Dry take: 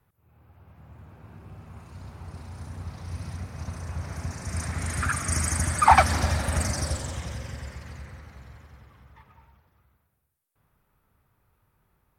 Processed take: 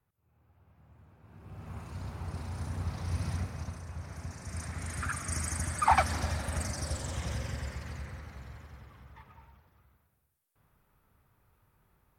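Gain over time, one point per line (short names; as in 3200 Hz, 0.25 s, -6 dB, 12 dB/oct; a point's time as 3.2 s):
1.21 s -10.5 dB
1.7 s +2 dB
3.38 s +2 dB
3.84 s -8 dB
6.78 s -8 dB
7.32 s 0 dB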